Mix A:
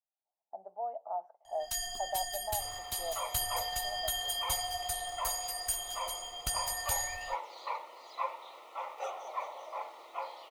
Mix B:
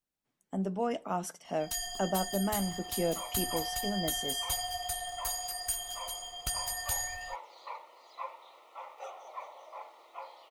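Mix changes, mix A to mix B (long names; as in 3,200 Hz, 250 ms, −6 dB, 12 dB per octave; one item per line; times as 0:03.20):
speech: remove flat-topped band-pass 740 Hz, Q 2.9
second sound −5.5 dB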